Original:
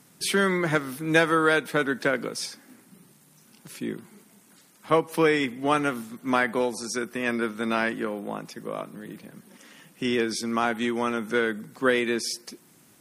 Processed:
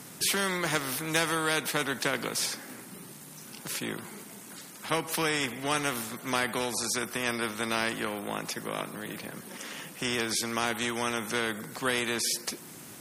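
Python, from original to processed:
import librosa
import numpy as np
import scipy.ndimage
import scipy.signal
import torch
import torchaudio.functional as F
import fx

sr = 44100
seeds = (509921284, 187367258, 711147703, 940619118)

y = scipy.signal.sosfilt(scipy.signal.butter(2, 48.0, 'highpass', fs=sr, output='sos'), x)
y = fx.spectral_comp(y, sr, ratio=2.0)
y = F.gain(torch.from_numpy(y), -5.0).numpy()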